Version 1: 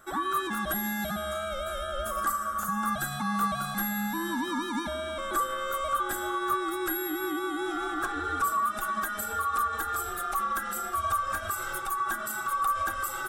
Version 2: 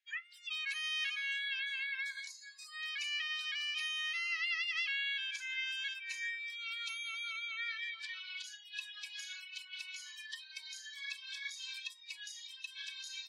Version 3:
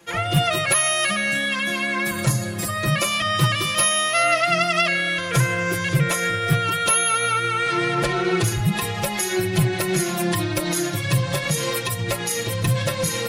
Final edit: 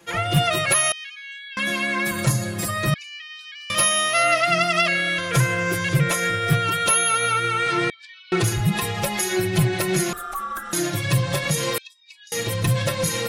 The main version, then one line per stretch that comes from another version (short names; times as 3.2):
3
0.92–1.57 from 2
2.94–3.7 from 2
7.9–8.32 from 2
10.13–10.73 from 1
11.78–12.32 from 2